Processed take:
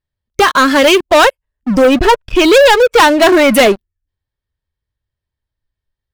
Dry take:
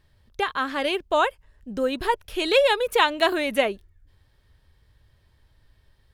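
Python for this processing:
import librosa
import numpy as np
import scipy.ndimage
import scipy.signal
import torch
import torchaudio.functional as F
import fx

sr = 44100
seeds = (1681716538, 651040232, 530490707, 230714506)

y = fx.lowpass(x, sr, hz=2800.0, slope=12, at=(1.82, 3.54))
y = fx.noise_reduce_blind(y, sr, reduce_db=14)
y = fx.leveller(y, sr, passes=5)
y = y * 10.0 ** (3.5 / 20.0)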